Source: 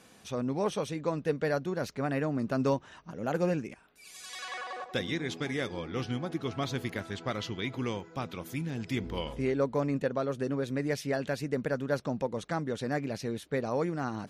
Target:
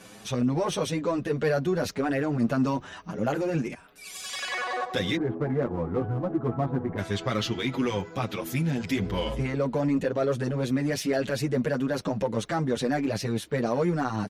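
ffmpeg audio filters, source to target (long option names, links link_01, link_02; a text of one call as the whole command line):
ffmpeg -i in.wav -filter_complex "[0:a]asplit=3[link_01][link_02][link_03];[link_01]afade=type=out:start_time=5.15:duration=0.02[link_04];[link_02]lowpass=frequency=1200:width=0.5412,lowpass=frequency=1200:width=1.3066,afade=type=in:start_time=5.15:duration=0.02,afade=type=out:start_time=6.97:duration=0.02[link_05];[link_03]afade=type=in:start_time=6.97:duration=0.02[link_06];[link_04][link_05][link_06]amix=inputs=3:normalize=0,alimiter=level_in=0.5dB:limit=-24dB:level=0:latency=1:release=25,volume=-0.5dB,asplit=2[link_07][link_08];[link_08]asoftclip=type=hard:threshold=-38dB,volume=-6dB[link_09];[link_07][link_09]amix=inputs=2:normalize=0,asplit=2[link_10][link_11];[link_11]adelay=7.5,afreqshift=0.99[link_12];[link_10][link_12]amix=inputs=2:normalize=1,volume=8.5dB" out.wav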